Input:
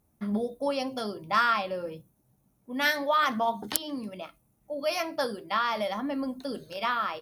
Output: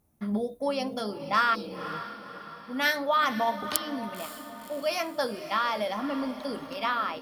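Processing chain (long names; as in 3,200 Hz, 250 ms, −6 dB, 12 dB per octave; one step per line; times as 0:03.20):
healed spectral selection 0:01.57–0:01.90, 290–3,700 Hz after
feedback delay with all-pass diffusion 529 ms, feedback 50%, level −12 dB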